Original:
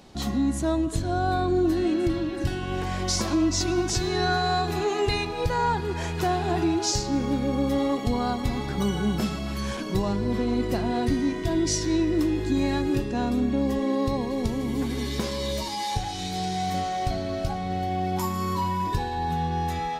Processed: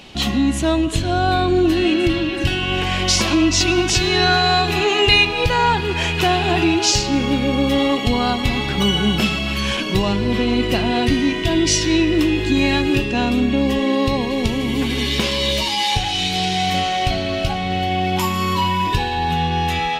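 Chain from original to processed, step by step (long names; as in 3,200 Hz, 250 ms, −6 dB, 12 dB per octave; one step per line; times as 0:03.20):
parametric band 2,800 Hz +15 dB 0.84 octaves
level +6.5 dB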